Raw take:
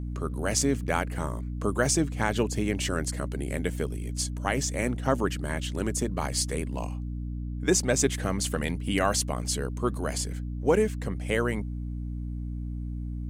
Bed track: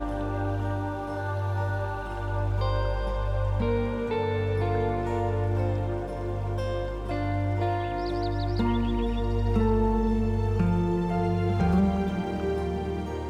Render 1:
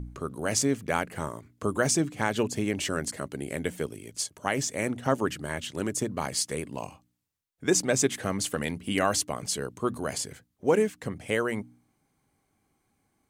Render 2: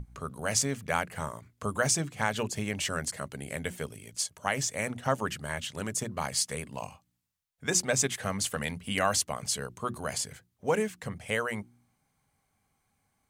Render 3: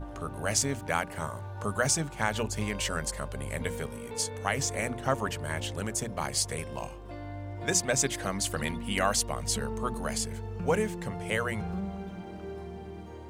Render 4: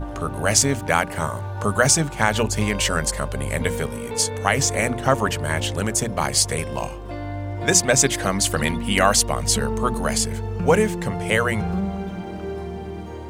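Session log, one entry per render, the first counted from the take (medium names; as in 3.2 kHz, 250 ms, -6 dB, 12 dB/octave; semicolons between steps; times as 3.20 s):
de-hum 60 Hz, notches 5
peaking EQ 330 Hz -12 dB 0.79 oct; hum notches 60/120/180/240/300/360 Hz
add bed track -12 dB
trim +10 dB; peak limiter -2 dBFS, peak gain reduction 1 dB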